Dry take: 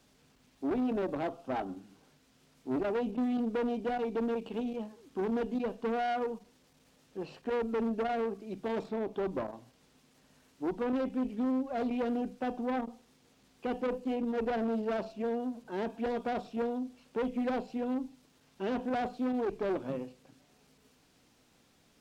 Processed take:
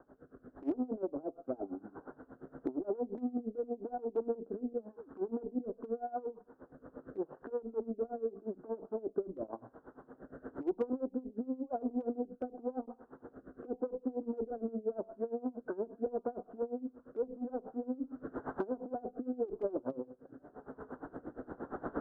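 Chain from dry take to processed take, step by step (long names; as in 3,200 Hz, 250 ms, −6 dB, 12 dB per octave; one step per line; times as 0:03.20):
0:17.57–0:19.67: converter with a step at zero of −44.5 dBFS
camcorder AGC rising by 13 dB per second
elliptic low-pass filter 1,500 Hz, stop band 40 dB
treble cut that deepens with the level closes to 640 Hz, closed at −30.5 dBFS
low shelf with overshoot 240 Hz −7 dB, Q 1.5
downward compressor 2.5 to 1, threshold −50 dBFS, peak gain reduction 14.5 dB
rotating-speaker cabinet horn 0.9 Hz
hard clipping −39 dBFS, distortion −35 dB
tremolo with a sine in dB 8.6 Hz, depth 21 dB
level +16 dB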